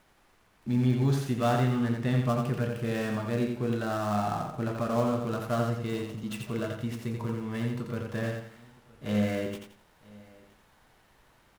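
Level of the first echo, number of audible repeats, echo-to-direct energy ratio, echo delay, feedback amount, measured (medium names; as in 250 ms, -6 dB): -4.5 dB, 5, -4.0 dB, 86 ms, no regular repeats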